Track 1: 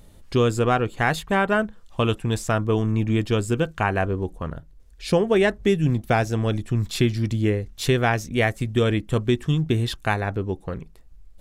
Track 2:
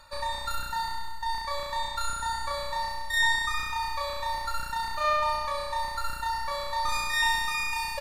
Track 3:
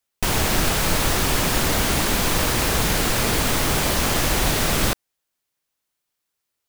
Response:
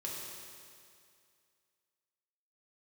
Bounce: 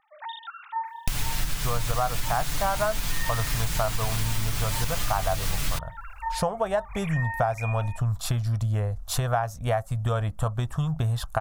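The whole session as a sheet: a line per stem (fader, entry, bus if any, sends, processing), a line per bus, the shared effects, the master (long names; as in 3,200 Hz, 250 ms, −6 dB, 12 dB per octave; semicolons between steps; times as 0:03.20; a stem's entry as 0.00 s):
0.0 dB, 1.30 s, no send, drawn EQ curve 120 Hz 0 dB, 350 Hz −18 dB, 640 Hz +12 dB, 1,300 Hz +10 dB, 2,100 Hz −8 dB, 11,000 Hz +6 dB
−4.0 dB, 0.00 s, no send, three sine waves on the formant tracks
+1.0 dB, 0.85 s, no send, speech leveller; parametric band 390 Hz −14 dB 2.5 octaves; comb filter 6.9 ms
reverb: not used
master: low-shelf EQ 200 Hz +8 dB; downward compressor 4 to 1, threshold −24 dBFS, peak gain reduction 16 dB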